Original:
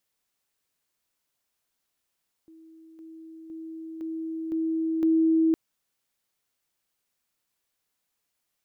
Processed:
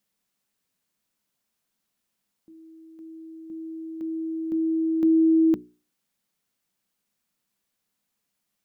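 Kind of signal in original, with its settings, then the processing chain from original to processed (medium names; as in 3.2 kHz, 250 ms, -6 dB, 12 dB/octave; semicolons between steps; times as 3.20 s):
level ladder 323 Hz -48 dBFS, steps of 6 dB, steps 6, 0.51 s 0.00 s
peaking EQ 200 Hz +11.5 dB 0.81 oct; hum notches 60/120/180/240/300/360/420 Hz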